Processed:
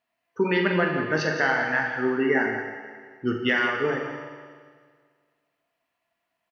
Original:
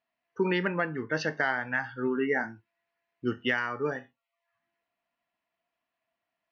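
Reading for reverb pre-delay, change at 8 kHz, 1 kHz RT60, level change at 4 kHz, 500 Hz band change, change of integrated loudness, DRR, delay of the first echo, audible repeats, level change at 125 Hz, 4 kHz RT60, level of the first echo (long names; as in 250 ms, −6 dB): 11 ms, can't be measured, 1.8 s, +6.0 dB, +6.0 dB, +5.5 dB, 1.0 dB, 45 ms, 2, +5.5 dB, 1.8 s, −9.0 dB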